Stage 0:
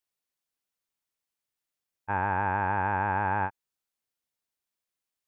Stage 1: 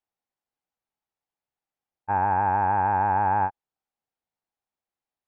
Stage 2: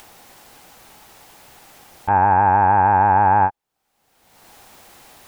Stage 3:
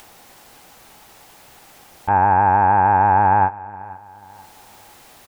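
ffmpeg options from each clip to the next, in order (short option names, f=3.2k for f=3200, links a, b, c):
-af "lowpass=f=1.3k:p=1,equalizer=f=800:t=o:w=0.37:g=9,volume=1.5dB"
-af "acompressor=mode=upward:threshold=-26dB:ratio=2.5,volume=8dB"
-af "aecho=1:1:488|976|1464:0.1|0.037|0.0137"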